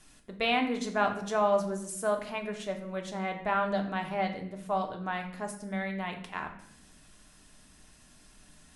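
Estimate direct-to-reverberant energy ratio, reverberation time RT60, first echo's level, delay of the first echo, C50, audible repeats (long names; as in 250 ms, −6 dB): 3.0 dB, 0.70 s, no echo audible, no echo audible, 9.0 dB, no echo audible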